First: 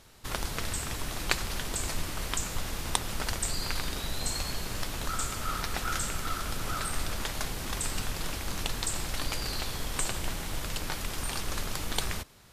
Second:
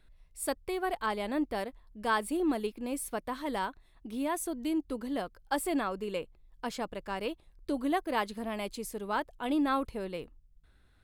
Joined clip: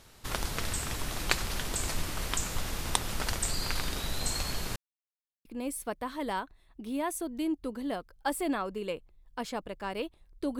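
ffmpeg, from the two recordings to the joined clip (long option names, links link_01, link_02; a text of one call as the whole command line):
ffmpeg -i cue0.wav -i cue1.wav -filter_complex "[0:a]apad=whole_dur=10.59,atrim=end=10.59,asplit=2[link_01][link_02];[link_01]atrim=end=4.76,asetpts=PTS-STARTPTS,afade=type=out:start_time=4.756:duration=0.004:curve=hsin[link_03];[link_02]atrim=start=4.76:end=5.45,asetpts=PTS-STARTPTS,volume=0[link_04];[1:a]atrim=start=2.71:end=7.85,asetpts=PTS-STARTPTS,afade=type=in:duration=0.004:curve=hsin[link_05];[link_03][link_04][link_05]concat=n=3:v=0:a=1" out.wav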